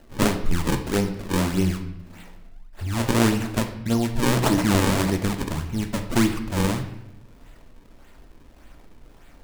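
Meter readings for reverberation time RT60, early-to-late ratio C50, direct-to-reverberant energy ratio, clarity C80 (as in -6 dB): 0.80 s, 9.5 dB, 5.0 dB, 12.0 dB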